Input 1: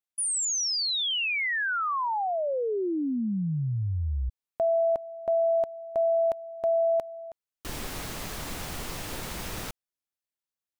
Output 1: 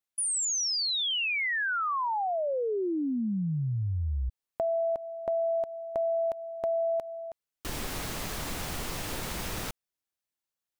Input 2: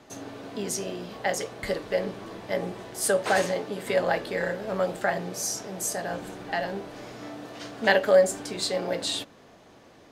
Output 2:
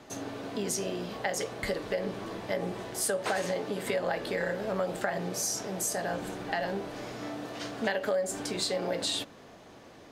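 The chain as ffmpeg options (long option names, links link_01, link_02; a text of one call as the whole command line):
ffmpeg -i in.wav -af "acompressor=threshold=-28dB:ratio=6:attack=8.5:release=228:knee=6:detection=peak,volume=1.5dB" out.wav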